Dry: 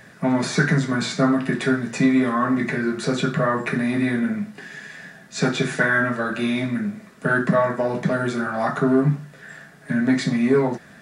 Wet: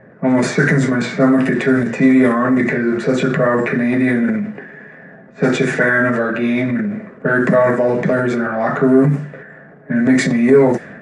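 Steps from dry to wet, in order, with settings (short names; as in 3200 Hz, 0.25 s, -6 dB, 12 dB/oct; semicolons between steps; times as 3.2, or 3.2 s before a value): transient shaper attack -1 dB, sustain +7 dB; ten-band EQ 125 Hz +4 dB, 250 Hz +5 dB, 500 Hz +11 dB, 2000 Hz +8 dB, 4000 Hz -5 dB, 8000 Hz +7 dB; low-pass opened by the level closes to 1000 Hz, open at -6.5 dBFS; gain -2 dB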